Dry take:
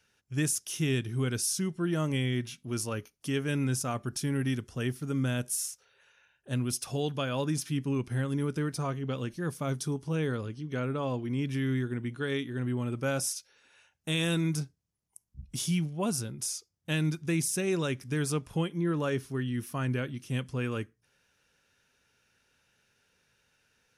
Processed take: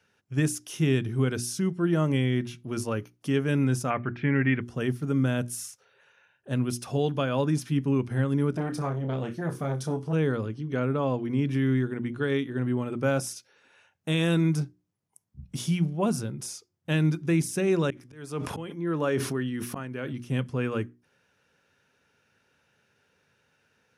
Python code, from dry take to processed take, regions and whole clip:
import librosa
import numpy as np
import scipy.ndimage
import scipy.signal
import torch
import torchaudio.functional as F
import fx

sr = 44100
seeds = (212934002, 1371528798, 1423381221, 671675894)

y = fx.chain(x, sr, fx.lowpass(hz=2700.0, slope=24),
    fx.peak_eq(hz=2100.0, db=13.0, octaves=0.94), at=(3.9, 4.62))
y = fx.chain(y, sr, fx.room_flutter(wall_m=5.2, rt60_s=0.22),
    fx.transformer_sat(knee_hz=490.0), at=(8.51, 10.13))
y = fx.chain(y, sr, fx.low_shelf(hz=150.0, db=-11.0),
    fx.auto_swell(attack_ms=432.0),
    fx.sustainer(db_per_s=25.0), at=(17.9, 20.13))
y = scipy.signal.sosfilt(scipy.signal.butter(2, 91.0, 'highpass', fs=sr, output='sos'), y)
y = fx.high_shelf(y, sr, hz=2700.0, db=-11.0)
y = fx.hum_notches(y, sr, base_hz=60, count=6)
y = y * librosa.db_to_amplitude(6.0)